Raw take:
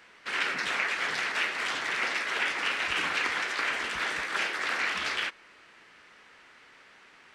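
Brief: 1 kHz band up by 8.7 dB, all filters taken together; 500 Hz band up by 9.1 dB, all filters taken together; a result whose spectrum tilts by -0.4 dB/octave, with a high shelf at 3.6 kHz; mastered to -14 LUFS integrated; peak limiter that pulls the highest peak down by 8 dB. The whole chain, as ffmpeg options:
-af "equalizer=f=500:t=o:g=8.5,equalizer=f=1000:t=o:g=9,highshelf=f=3600:g=4.5,volume=3.98,alimiter=limit=0.562:level=0:latency=1"

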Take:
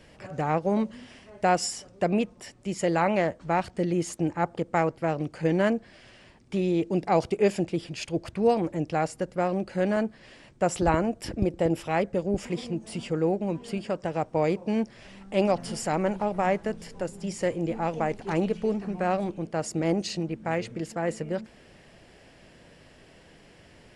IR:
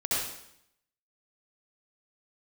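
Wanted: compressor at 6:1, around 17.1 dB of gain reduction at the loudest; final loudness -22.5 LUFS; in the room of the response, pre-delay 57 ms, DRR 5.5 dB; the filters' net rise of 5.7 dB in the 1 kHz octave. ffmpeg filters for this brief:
-filter_complex "[0:a]equalizer=f=1000:t=o:g=8,acompressor=threshold=0.0224:ratio=6,asplit=2[s0][s1];[1:a]atrim=start_sample=2205,adelay=57[s2];[s1][s2]afir=irnorm=-1:irlink=0,volume=0.188[s3];[s0][s3]amix=inputs=2:normalize=0,volume=5.01"

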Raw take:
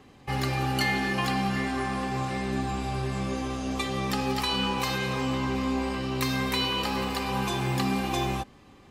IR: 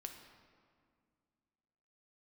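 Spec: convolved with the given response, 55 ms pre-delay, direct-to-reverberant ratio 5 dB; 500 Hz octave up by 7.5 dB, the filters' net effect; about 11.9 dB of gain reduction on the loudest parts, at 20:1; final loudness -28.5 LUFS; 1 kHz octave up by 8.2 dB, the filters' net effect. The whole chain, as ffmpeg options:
-filter_complex "[0:a]equalizer=f=500:t=o:g=8,equalizer=f=1000:t=o:g=7.5,acompressor=threshold=0.0316:ratio=20,asplit=2[s0][s1];[1:a]atrim=start_sample=2205,adelay=55[s2];[s1][s2]afir=irnorm=-1:irlink=0,volume=0.891[s3];[s0][s3]amix=inputs=2:normalize=0,volume=1.78"

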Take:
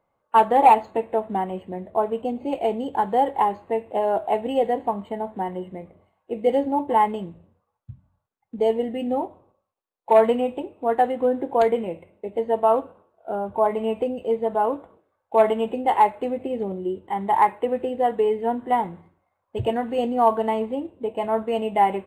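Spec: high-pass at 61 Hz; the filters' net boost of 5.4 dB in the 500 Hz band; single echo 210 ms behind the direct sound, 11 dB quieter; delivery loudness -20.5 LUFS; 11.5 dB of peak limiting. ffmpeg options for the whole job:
-af "highpass=61,equalizer=f=500:t=o:g=6.5,alimiter=limit=0.224:level=0:latency=1,aecho=1:1:210:0.282,volume=1.33"

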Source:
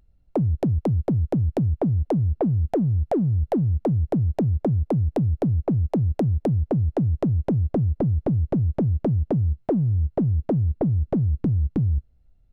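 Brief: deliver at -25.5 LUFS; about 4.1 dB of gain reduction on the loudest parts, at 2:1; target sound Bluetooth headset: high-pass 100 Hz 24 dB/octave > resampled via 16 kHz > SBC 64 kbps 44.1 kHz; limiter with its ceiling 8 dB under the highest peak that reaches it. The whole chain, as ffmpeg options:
-af "acompressor=threshold=0.0501:ratio=2,alimiter=limit=0.0668:level=0:latency=1,highpass=f=100:w=0.5412,highpass=f=100:w=1.3066,aresample=16000,aresample=44100,volume=2.11" -ar 44100 -c:a sbc -b:a 64k

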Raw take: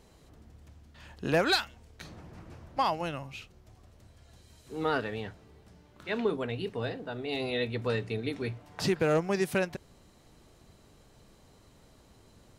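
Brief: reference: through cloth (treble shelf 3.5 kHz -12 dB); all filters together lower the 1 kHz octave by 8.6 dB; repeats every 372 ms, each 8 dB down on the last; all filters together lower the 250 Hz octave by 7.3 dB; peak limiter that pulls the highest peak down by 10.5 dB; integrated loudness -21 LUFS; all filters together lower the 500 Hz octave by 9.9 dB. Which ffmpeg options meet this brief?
-af "equalizer=f=250:t=o:g=-7.5,equalizer=f=500:t=o:g=-8,equalizer=f=1000:t=o:g=-7,alimiter=level_in=1.58:limit=0.0631:level=0:latency=1,volume=0.631,highshelf=f=3500:g=-12,aecho=1:1:372|744|1116|1488|1860:0.398|0.159|0.0637|0.0255|0.0102,volume=11.2"

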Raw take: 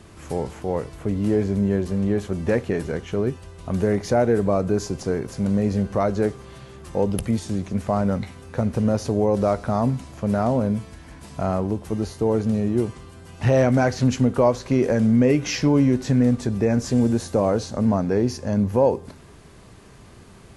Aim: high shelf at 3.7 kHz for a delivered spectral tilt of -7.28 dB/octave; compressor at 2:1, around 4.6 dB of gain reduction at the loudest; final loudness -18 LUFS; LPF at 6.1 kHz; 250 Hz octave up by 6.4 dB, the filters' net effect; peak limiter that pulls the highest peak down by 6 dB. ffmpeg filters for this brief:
-af "lowpass=6100,equalizer=f=250:t=o:g=7.5,highshelf=f=3700:g=8.5,acompressor=threshold=0.158:ratio=2,volume=1.68,alimiter=limit=0.447:level=0:latency=1"

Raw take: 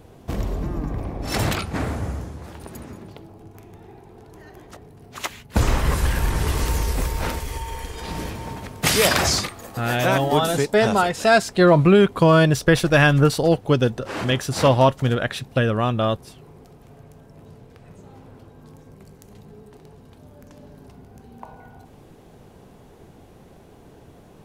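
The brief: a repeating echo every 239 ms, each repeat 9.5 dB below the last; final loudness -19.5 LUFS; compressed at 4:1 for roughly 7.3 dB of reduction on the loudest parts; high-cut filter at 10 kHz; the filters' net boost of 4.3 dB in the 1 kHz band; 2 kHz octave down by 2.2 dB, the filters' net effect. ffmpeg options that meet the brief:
-af "lowpass=10000,equalizer=f=1000:t=o:g=7,equalizer=f=2000:t=o:g=-6,acompressor=threshold=0.141:ratio=4,aecho=1:1:239|478|717|956:0.335|0.111|0.0365|0.012,volume=1.5"

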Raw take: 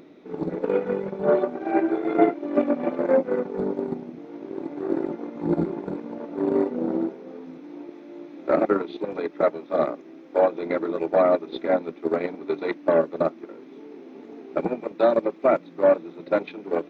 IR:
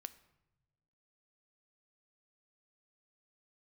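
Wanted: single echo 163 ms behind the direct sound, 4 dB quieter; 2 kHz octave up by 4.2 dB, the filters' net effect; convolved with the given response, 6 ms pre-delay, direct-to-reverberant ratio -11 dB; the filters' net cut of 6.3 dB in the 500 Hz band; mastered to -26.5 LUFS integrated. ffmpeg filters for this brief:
-filter_complex "[0:a]equalizer=f=500:t=o:g=-8.5,equalizer=f=2000:t=o:g=6,aecho=1:1:163:0.631,asplit=2[s0][s1];[1:a]atrim=start_sample=2205,adelay=6[s2];[s1][s2]afir=irnorm=-1:irlink=0,volume=5.96[s3];[s0][s3]amix=inputs=2:normalize=0,volume=0.316"

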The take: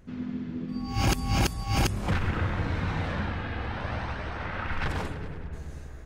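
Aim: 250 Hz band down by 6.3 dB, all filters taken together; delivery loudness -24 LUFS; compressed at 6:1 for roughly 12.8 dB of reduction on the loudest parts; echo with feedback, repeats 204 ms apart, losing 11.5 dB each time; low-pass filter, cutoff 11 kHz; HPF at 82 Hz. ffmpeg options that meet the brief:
-af "highpass=82,lowpass=11000,equalizer=f=250:t=o:g=-8.5,acompressor=threshold=0.0141:ratio=6,aecho=1:1:204|408|612:0.266|0.0718|0.0194,volume=6.68"

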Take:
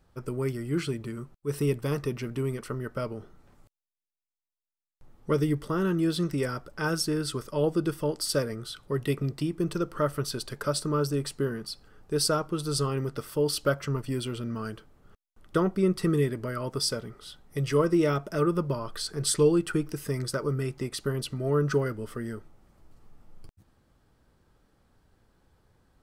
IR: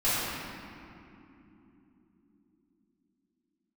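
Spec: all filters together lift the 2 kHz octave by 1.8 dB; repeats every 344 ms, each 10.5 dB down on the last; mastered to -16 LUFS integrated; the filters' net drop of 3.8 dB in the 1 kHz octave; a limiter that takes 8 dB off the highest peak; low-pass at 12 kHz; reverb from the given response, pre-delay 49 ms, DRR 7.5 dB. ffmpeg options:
-filter_complex "[0:a]lowpass=12000,equalizer=f=1000:t=o:g=-8.5,equalizer=f=2000:t=o:g=6.5,alimiter=limit=0.0891:level=0:latency=1,aecho=1:1:344|688|1032:0.299|0.0896|0.0269,asplit=2[s0][s1];[1:a]atrim=start_sample=2205,adelay=49[s2];[s1][s2]afir=irnorm=-1:irlink=0,volume=0.0891[s3];[s0][s3]amix=inputs=2:normalize=0,volume=5.31"

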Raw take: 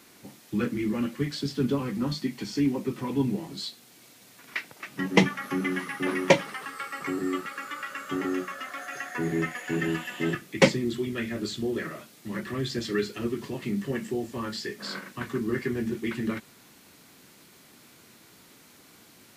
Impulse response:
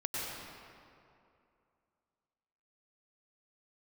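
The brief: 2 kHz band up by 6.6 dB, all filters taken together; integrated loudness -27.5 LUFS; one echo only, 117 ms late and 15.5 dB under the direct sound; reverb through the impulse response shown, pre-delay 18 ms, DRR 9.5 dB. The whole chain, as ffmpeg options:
-filter_complex "[0:a]equalizer=f=2000:t=o:g=7.5,aecho=1:1:117:0.168,asplit=2[s0][s1];[1:a]atrim=start_sample=2205,adelay=18[s2];[s1][s2]afir=irnorm=-1:irlink=0,volume=0.2[s3];[s0][s3]amix=inputs=2:normalize=0,volume=0.944"

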